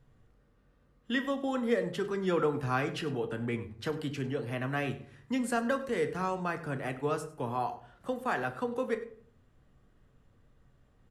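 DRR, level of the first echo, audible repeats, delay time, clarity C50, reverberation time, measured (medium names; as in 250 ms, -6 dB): 7.0 dB, -18.0 dB, 1, 99 ms, 12.5 dB, 0.55 s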